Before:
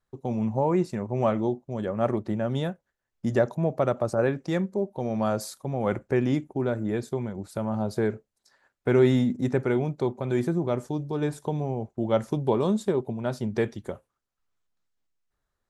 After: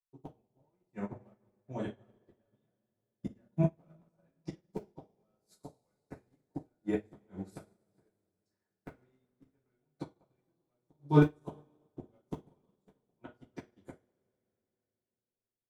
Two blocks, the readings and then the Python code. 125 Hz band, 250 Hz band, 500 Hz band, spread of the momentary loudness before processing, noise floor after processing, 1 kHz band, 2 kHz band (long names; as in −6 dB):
−9.0 dB, −11.0 dB, −16.0 dB, 7 LU, below −85 dBFS, −13.5 dB, −12.5 dB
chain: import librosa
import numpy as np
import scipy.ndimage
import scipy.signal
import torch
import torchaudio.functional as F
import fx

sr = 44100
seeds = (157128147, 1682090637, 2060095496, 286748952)

p1 = fx.schmitt(x, sr, flips_db=-20.5)
p2 = x + (p1 * librosa.db_to_amplitude(-9.0))
p3 = fx.gate_flip(p2, sr, shuts_db=-19.0, range_db=-28)
p4 = fx.rev_double_slope(p3, sr, seeds[0], early_s=0.4, late_s=4.3, knee_db=-18, drr_db=-7.5)
p5 = fx.upward_expand(p4, sr, threshold_db=-43.0, expansion=2.5)
y = p5 * librosa.db_to_amplitude(2.0)